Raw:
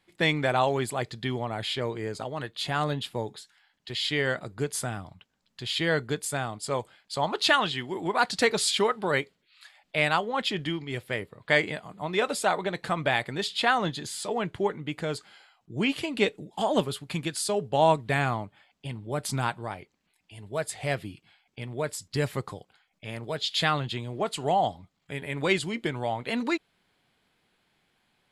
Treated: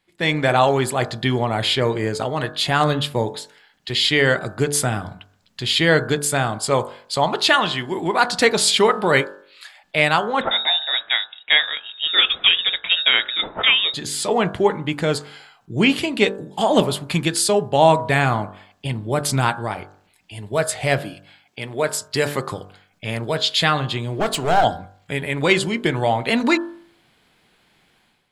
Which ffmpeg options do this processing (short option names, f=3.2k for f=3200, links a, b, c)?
-filter_complex "[0:a]asettb=1/sr,asplit=3[a][b][c];[a]atrim=end=10.414[d];[b]atrim=start=10.41:end=13.94,asetpts=PTS-STARTPTS,afade=t=in:d=0.004:c=qsin,afade=t=out:st=3.526:d=0.004:c=qsin,lowpass=f=3.3k:t=q:w=0.5098,lowpass=f=3.3k:t=q:w=0.6013,lowpass=f=3.3k:t=q:w=0.9,lowpass=f=3.3k:t=q:w=2.563,afreqshift=-3900[e];[c]atrim=start=13.936[f];[d][e]acrossfade=d=0.004:c1=hsin:c2=qsin[g];[g][f]acrossfade=d=0.004:c1=qsin:c2=hsin,asettb=1/sr,asplit=3[h][i][j];[h]atrim=end=21.004[k];[i]atrim=start=21:end=22.52,asetpts=PTS-STARTPTS,afade=t=in:d=0.004:c=qsin,afade=t=out:st=1.516:d=0.004:c=qsin,highpass=f=320:p=1[l];[j]atrim=start=22.516[m];[k][l]acrossfade=d=0.004:c1=hsin:c2=qsin[n];[n][m]acrossfade=d=0.004:c1=qsin:c2=hsin,asplit=3[o][p][q];[o]afade=t=out:st=24.19:d=0.02[r];[p]aeval=exprs='clip(val(0),-1,0.0282)':c=same,afade=t=in:st=24.19:d=0.02,afade=t=out:st=24.63:d=0.02[s];[q]afade=t=in:st=24.63:d=0.02[t];[r][s][t]amix=inputs=3:normalize=0,bandreject=f=48.46:t=h:w=4,bandreject=f=96.92:t=h:w=4,bandreject=f=145.38:t=h:w=4,bandreject=f=193.84:t=h:w=4,bandreject=f=242.3:t=h:w=4,bandreject=f=290.76:t=h:w=4,bandreject=f=339.22:t=h:w=4,bandreject=f=387.68:t=h:w=4,bandreject=f=436.14:t=h:w=4,bandreject=f=484.6:t=h:w=4,bandreject=f=533.06:t=h:w=4,bandreject=f=581.52:t=h:w=4,bandreject=f=629.98:t=h:w=4,bandreject=f=678.44:t=h:w=4,bandreject=f=726.9:t=h:w=4,bandreject=f=775.36:t=h:w=4,bandreject=f=823.82:t=h:w=4,bandreject=f=872.28:t=h:w=4,bandreject=f=920.74:t=h:w=4,bandreject=f=969.2:t=h:w=4,bandreject=f=1.01766k:t=h:w=4,bandreject=f=1.06612k:t=h:w=4,bandreject=f=1.11458k:t=h:w=4,bandreject=f=1.16304k:t=h:w=4,bandreject=f=1.2115k:t=h:w=4,bandreject=f=1.25996k:t=h:w=4,bandreject=f=1.30842k:t=h:w=4,bandreject=f=1.35688k:t=h:w=4,bandreject=f=1.40534k:t=h:w=4,bandreject=f=1.4538k:t=h:w=4,bandreject=f=1.50226k:t=h:w=4,bandreject=f=1.55072k:t=h:w=4,bandreject=f=1.59918k:t=h:w=4,bandreject=f=1.64764k:t=h:w=4,bandreject=f=1.6961k:t=h:w=4,bandreject=f=1.74456k:t=h:w=4,dynaudnorm=f=120:g=5:m=11.5dB"